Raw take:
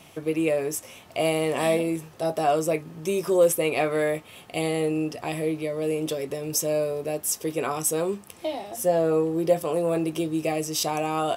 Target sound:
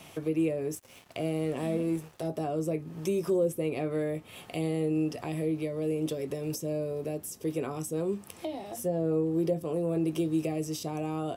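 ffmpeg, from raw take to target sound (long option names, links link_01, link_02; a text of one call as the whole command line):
ffmpeg -i in.wav -filter_complex "[0:a]acrossover=split=400[link_01][link_02];[link_02]acompressor=threshold=-38dB:ratio=10[link_03];[link_01][link_03]amix=inputs=2:normalize=0,asettb=1/sr,asplit=3[link_04][link_05][link_06];[link_04]atrim=end=0.754[link_07];[link_05]atrim=start=0.75:end=2.28,asetpts=PTS-STARTPTS,afade=type=in:duration=0.004:curve=qsin,afade=type=out:start_time=1.526:duration=0.004:curve=qsin,aeval=exprs='sgn(val(0))*max(abs(val(0))-0.00299,0)':channel_layout=same[link_08];[link_06]atrim=start=2.276[link_09];[link_07][link_08]acrossfade=duration=0.004:curve1=hsin:curve2=qsin[link_10];[link_10][link_09]acrossfade=duration=0.004:curve1=qsin:curve2=hsin" out.wav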